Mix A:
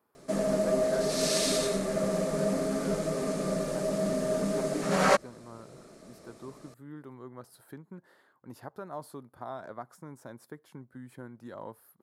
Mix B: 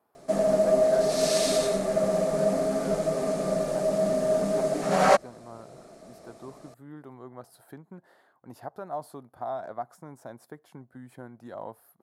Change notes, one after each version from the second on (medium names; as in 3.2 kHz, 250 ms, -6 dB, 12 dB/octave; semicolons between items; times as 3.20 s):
master: add peaking EQ 710 Hz +10 dB 0.48 oct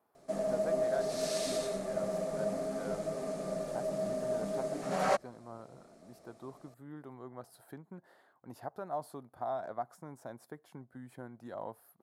speech -3.0 dB; background -10.0 dB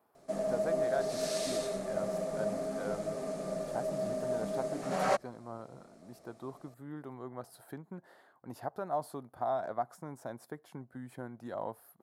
speech +3.5 dB